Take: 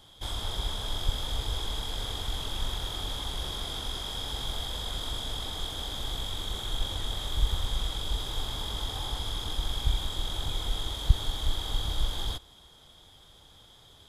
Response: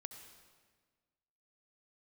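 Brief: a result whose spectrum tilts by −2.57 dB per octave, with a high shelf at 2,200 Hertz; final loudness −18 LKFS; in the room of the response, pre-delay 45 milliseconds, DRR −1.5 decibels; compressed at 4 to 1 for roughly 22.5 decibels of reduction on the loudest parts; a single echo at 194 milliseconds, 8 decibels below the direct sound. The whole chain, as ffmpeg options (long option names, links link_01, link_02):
-filter_complex "[0:a]highshelf=frequency=2200:gain=8.5,acompressor=threshold=-42dB:ratio=4,aecho=1:1:194:0.398,asplit=2[link_01][link_02];[1:a]atrim=start_sample=2205,adelay=45[link_03];[link_02][link_03]afir=irnorm=-1:irlink=0,volume=6dB[link_04];[link_01][link_04]amix=inputs=2:normalize=0,volume=19.5dB"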